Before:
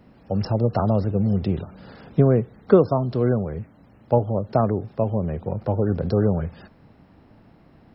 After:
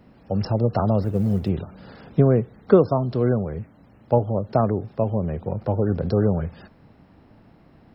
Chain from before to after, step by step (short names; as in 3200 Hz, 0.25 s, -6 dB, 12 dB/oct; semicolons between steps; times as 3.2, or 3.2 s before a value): 1.02–1.49 G.711 law mismatch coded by A